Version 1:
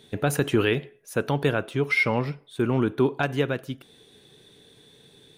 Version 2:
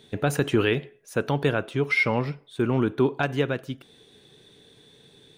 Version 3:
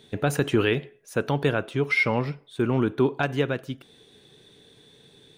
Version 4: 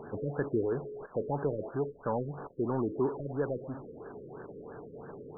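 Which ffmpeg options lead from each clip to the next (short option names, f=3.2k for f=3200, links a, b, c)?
-af "equalizer=f=12k:t=o:w=0.51:g=-8"
-af anull
-filter_complex "[0:a]aeval=exprs='val(0)+0.5*0.0398*sgn(val(0))':c=same,asplit=2[a][b];[b]highpass=f=720:p=1,volume=10dB,asoftclip=type=tanh:threshold=-9dB[c];[a][c]amix=inputs=2:normalize=0,lowpass=f=1.4k:p=1,volume=-6dB,afftfilt=real='re*lt(b*sr/1024,550*pow(1800/550,0.5+0.5*sin(2*PI*3*pts/sr)))':imag='im*lt(b*sr/1024,550*pow(1800/550,0.5+0.5*sin(2*PI*3*pts/sr)))':win_size=1024:overlap=0.75,volume=-8dB"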